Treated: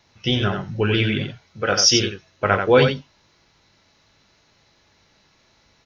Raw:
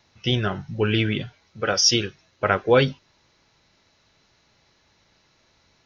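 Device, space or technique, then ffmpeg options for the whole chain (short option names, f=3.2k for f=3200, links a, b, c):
slapback doubling: -filter_complex "[0:a]asplit=3[a][b][c];[b]adelay=20,volume=-8.5dB[d];[c]adelay=88,volume=-6dB[e];[a][d][e]amix=inputs=3:normalize=0,volume=1.5dB"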